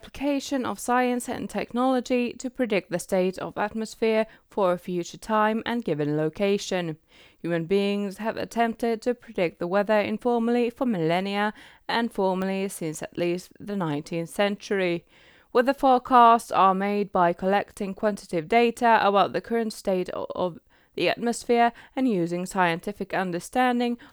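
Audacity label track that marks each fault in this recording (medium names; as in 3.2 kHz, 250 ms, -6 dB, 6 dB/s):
12.420000	12.420000	pop -18 dBFS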